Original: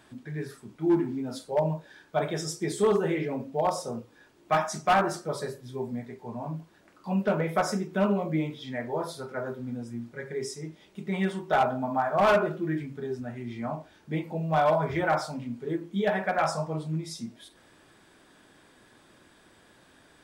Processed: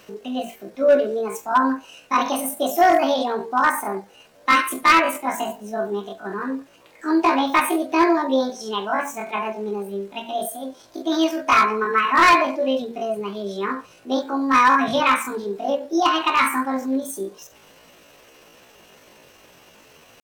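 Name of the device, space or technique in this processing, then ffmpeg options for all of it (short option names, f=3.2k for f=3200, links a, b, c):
chipmunk voice: -filter_complex "[0:a]asplit=3[a][b][c];[a]afade=t=out:st=9.81:d=0.02[d];[b]bandreject=f=50:t=h:w=6,bandreject=f=100:t=h:w=6,bandreject=f=150:t=h:w=6,bandreject=f=200:t=h:w=6,bandreject=f=250:t=h:w=6,bandreject=f=300:t=h:w=6,bandreject=f=350:t=h:w=6,bandreject=f=400:t=h:w=6,bandreject=f=450:t=h:w=6,afade=t=in:st=9.81:d=0.02,afade=t=out:st=11:d=0.02[e];[c]afade=t=in:st=11:d=0.02[f];[d][e][f]amix=inputs=3:normalize=0,asetrate=74167,aresample=44100,atempo=0.594604,volume=8dB"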